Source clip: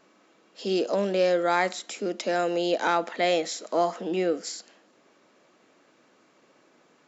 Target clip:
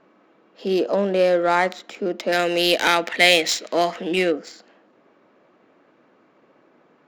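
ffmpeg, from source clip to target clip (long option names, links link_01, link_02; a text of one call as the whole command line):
ffmpeg -i in.wav -filter_complex "[0:a]asettb=1/sr,asplit=3[link_01][link_02][link_03];[link_01]atrim=end=2.324[link_04];[link_02]atrim=start=2.32:end=4.32,asetpts=PTS-STARTPTS,afade=type=in:duration=0.004:curve=qsin,afade=type=out:start_time=1.996:duration=0.004:curve=qsin,highshelf=frequency=1600:width_type=q:width=1.5:gain=9[link_05];[link_03]atrim=start=4.316[link_06];[link_04][link_05]acrossfade=duration=0.004:curve1=hsin:curve2=qsin[link_07];[link_07][link_06]acrossfade=duration=0.004:curve1=qsin:curve2=hsin,adynamicsmooth=sensitivity=2.5:basefreq=2400,volume=5dB" out.wav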